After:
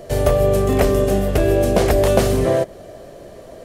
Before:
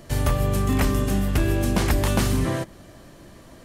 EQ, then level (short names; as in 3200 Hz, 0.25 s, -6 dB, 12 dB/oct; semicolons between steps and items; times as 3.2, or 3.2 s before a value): band shelf 530 Hz +12.5 dB 1.1 oct; +2.0 dB